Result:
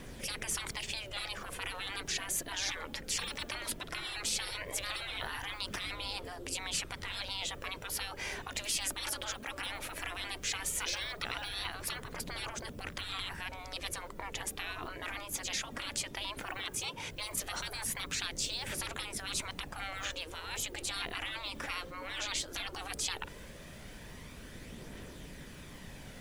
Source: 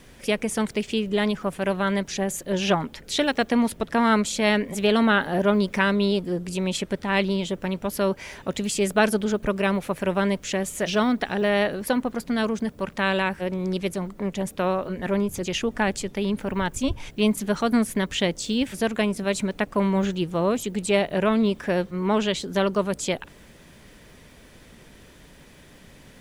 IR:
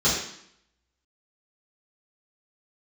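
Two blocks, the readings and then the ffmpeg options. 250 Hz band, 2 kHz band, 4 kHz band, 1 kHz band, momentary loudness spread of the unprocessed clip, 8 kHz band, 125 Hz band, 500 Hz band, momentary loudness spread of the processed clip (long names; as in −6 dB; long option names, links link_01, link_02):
−26.5 dB, −10.5 dB, −5.0 dB, −14.5 dB, 7 LU, −2.0 dB, −17.5 dB, −23.5 dB, 12 LU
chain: -af "afftfilt=real='re*lt(hypot(re,im),0.0631)':imag='im*lt(hypot(re,im),0.0631)':win_size=1024:overlap=0.75,aphaser=in_gain=1:out_gain=1:delay=3.8:decay=0.29:speed=0.16:type=triangular"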